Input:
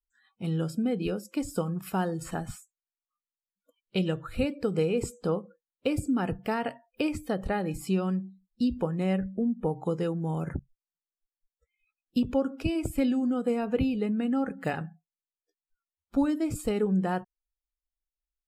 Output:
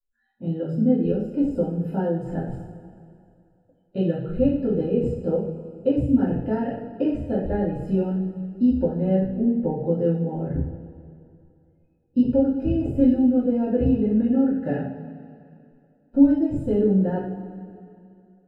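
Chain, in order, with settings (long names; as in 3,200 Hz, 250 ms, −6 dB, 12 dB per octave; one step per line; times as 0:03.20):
moving average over 39 samples
coupled-rooms reverb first 0.53 s, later 2.6 s, from −15 dB, DRR −8.5 dB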